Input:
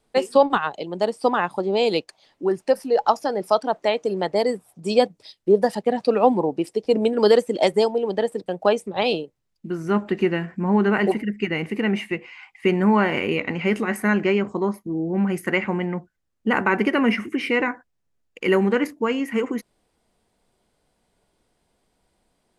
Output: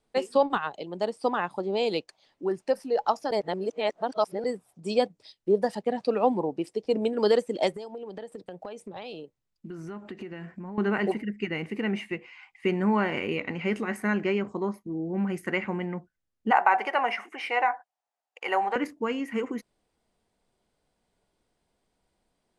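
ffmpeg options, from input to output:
ffmpeg -i in.wav -filter_complex "[0:a]asettb=1/sr,asplit=3[link_01][link_02][link_03];[link_01]atrim=end=7.764[link_04];[link_02]atrim=start=7.76:end=10.78,asetpts=PTS-STARTPTS,afade=type=in:duration=0.004:curve=qsin,afade=type=out:start_time=3.016:duration=0.004:curve=qsin,acompressor=threshold=-28dB:ratio=10:attack=3.2:release=140:knee=1:detection=peak[link_05];[link_03]atrim=start=10.776[link_06];[link_04][link_05]acrossfade=duration=0.004:curve1=hsin:curve2=qsin[link_07];[link_07][link_06]acrossfade=duration=0.004:curve1=qsin:curve2=hsin,asettb=1/sr,asplit=3[link_08][link_09][link_10];[link_08]atrim=end=16.514[link_11];[link_09]atrim=start=16.51:end=18.76,asetpts=PTS-STARTPTS,afade=type=in:duration=0.004:curve=qsin,afade=type=out:start_time=2.246:duration=0.004:curve=qsin,highpass=frequency=760:width_type=q:width=6.4[link_12];[link_10]atrim=start=18.756[link_13];[link_11][link_12]acrossfade=duration=0.004:curve1=hsin:curve2=qsin[link_14];[link_14][link_13]acrossfade=duration=0.004:curve1=qsin:curve2=hsin,asplit=3[link_15][link_16][link_17];[link_15]atrim=end=3.312[link_18];[link_16]atrim=start=3.308:end=4.442,asetpts=PTS-STARTPTS,areverse[link_19];[link_17]atrim=start=4.438[link_20];[link_18][link_19]acrossfade=duration=0.004:curve1=hsin:curve2=hsin[link_21];[link_21][link_20]acrossfade=duration=0.004:curve1=hsin:curve2=hsin,lowpass=10000,volume=-6.5dB" out.wav

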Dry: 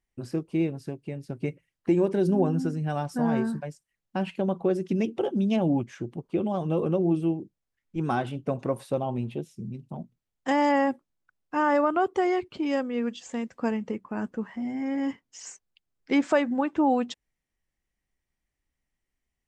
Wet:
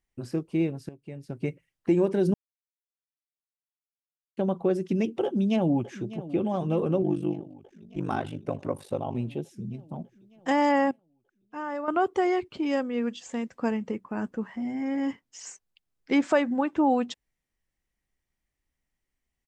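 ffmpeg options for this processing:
ffmpeg -i in.wav -filter_complex "[0:a]asplit=2[link_01][link_02];[link_02]afade=type=in:start_time=5.24:duration=0.01,afade=type=out:start_time=6.33:duration=0.01,aecho=0:1:600|1200|1800|2400|3000|3600|4200|4800|5400|6000:0.16788|0.12591|0.0944327|0.0708245|0.0531184|0.0398388|0.0298791|0.0224093|0.016807|0.0126052[link_03];[link_01][link_03]amix=inputs=2:normalize=0,asettb=1/sr,asplit=3[link_04][link_05][link_06];[link_04]atrim=end=7.024[link_07];[link_05]atrim=start=7.02:end=9.15,asetpts=PTS-STARTPTS,afade=type=in:duration=0.004:curve=qsin,afade=type=out:start_time=2.126:duration=0.004:curve=qsin,aeval=exprs='val(0)*sin(2*PI*25*n/s)':channel_layout=same[link_08];[link_06]atrim=start=9.146[link_09];[link_07][link_08]acrossfade=duration=0.004:curve1=hsin:curve2=qsin[link_10];[link_10][link_09]acrossfade=duration=0.004:curve1=qsin:curve2=hsin,asplit=6[link_11][link_12][link_13][link_14][link_15][link_16];[link_11]atrim=end=0.89,asetpts=PTS-STARTPTS,afade=type=out:start_time=0.886:duration=0.004:curve=hsin:silence=0.211349[link_17];[link_12]atrim=start=0.89:end=2.34,asetpts=PTS-STARTPTS,afade=type=in:duration=0.52:silence=0.211349,afade=type=out:start_time=1.446:duration=0.004:curve=hsin[link_18];[link_13]atrim=start=2.34:end=4.37,asetpts=PTS-STARTPTS,volume=0[link_19];[link_14]atrim=start=4.37:end=10.912,asetpts=PTS-STARTPTS,afade=type=in:duration=0.004:curve=hsin[link_20];[link_15]atrim=start=10.908:end=11.882,asetpts=PTS-STARTPTS,volume=-10.5dB[link_21];[link_16]atrim=start=11.878[link_22];[link_17][link_18][link_19][link_20]concat=n=4:v=0:a=1[link_23];[link_23][link_21]acrossfade=duration=0.004:curve1=hsin:curve2=hsin[link_24];[link_24][link_22]acrossfade=duration=0.004:curve1=hsin:curve2=hsin" out.wav

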